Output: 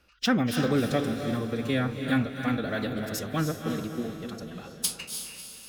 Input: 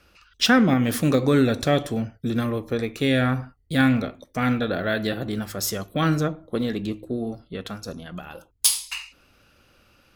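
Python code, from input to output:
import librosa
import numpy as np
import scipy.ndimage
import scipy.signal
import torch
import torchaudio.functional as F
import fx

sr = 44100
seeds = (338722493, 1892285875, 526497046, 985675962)

y = fx.echo_diffused(x, sr, ms=567, feedback_pct=48, wet_db=-5.5)
y = fx.stretch_vocoder(y, sr, factor=0.56)
y = y * librosa.db_to_amplitude(-5.5)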